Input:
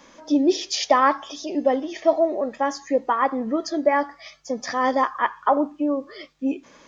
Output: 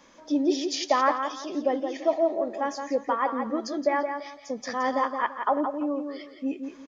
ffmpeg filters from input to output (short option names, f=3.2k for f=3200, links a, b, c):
-filter_complex "[0:a]asplit=2[a][b];[b]adelay=170,lowpass=f=4.1k:p=1,volume=-6.5dB,asplit=2[c][d];[d]adelay=170,lowpass=f=4.1k:p=1,volume=0.27,asplit=2[e][f];[f]adelay=170,lowpass=f=4.1k:p=1,volume=0.27[g];[a][c][e][g]amix=inputs=4:normalize=0,volume=-5.5dB"